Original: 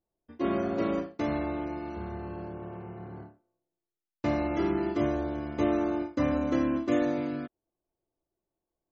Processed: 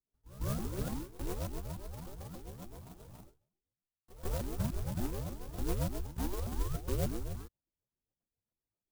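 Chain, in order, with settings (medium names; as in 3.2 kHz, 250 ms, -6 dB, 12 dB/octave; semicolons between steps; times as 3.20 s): sawtooth pitch modulation +8.5 st, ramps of 294 ms; rotary cabinet horn 7.5 Hz; on a send: reverse echo 149 ms -17.5 dB; on the sum: mistuned SSB -370 Hz 320–2100 Hz; sampling jitter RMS 0.12 ms; trim -2.5 dB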